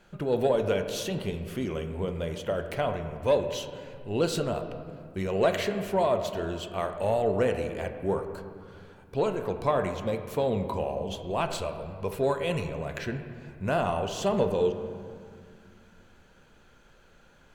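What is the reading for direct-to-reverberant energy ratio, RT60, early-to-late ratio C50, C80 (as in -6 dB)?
6.5 dB, 2.1 s, 8.0 dB, 9.5 dB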